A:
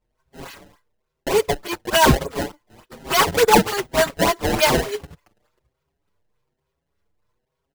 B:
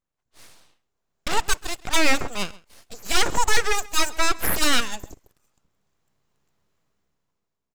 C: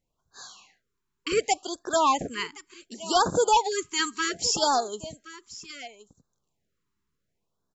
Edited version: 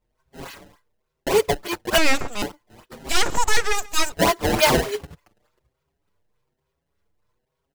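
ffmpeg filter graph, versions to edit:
ffmpeg -i take0.wav -i take1.wav -filter_complex "[1:a]asplit=2[link_01][link_02];[0:a]asplit=3[link_03][link_04][link_05];[link_03]atrim=end=1.982[link_06];[link_01]atrim=start=1.978:end=2.422[link_07];[link_04]atrim=start=2.418:end=3.092[link_08];[link_02]atrim=start=3.088:end=4.122[link_09];[link_05]atrim=start=4.118[link_10];[link_06][link_07]acrossfade=duration=0.004:curve1=hsin:curve2=hsin[link_11];[link_11][link_08]acrossfade=duration=0.004:curve1=hsin:curve2=hsin[link_12];[link_12][link_09]acrossfade=duration=0.004:curve1=hsin:curve2=hsin[link_13];[link_13][link_10]acrossfade=duration=0.004:curve1=hsin:curve2=hsin" out.wav

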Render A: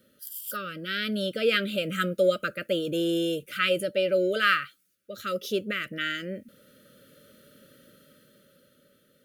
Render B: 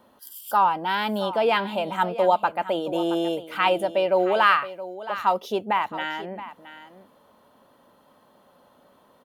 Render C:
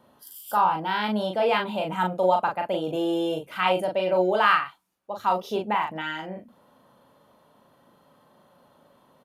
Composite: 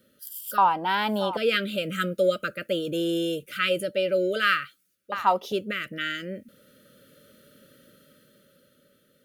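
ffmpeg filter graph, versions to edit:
ffmpeg -i take0.wav -i take1.wav -filter_complex "[1:a]asplit=2[link_01][link_02];[0:a]asplit=3[link_03][link_04][link_05];[link_03]atrim=end=0.582[link_06];[link_01]atrim=start=0.578:end=1.372[link_07];[link_04]atrim=start=1.368:end=5.122[link_08];[link_02]atrim=start=5.118:end=5.522[link_09];[link_05]atrim=start=5.518[link_10];[link_06][link_07]acrossfade=duration=0.004:curve1=hsin:curve2=hsin[link_11];[link_11][link_08]acrossfade=duration=0.004:curve1=hsin:curve2=hsin[link_12];[link_12][link_09]acrossfade=duration=0.004:curve1=hsin:curve2=hsin[link_13];[link_13][link_10]acrossfade=duration=0.004:curve1=hsin:curve2=hsin" out.wav

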